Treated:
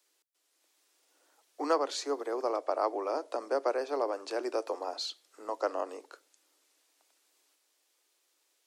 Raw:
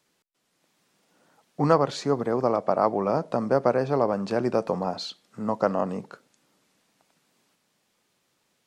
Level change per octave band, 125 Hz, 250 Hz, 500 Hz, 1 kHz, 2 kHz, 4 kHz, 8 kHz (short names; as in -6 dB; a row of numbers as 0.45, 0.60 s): under -40 dB, -13.0 dB, -8.0 dB, -7.5 dB, -6.0 dB, -2.0 dB, n/a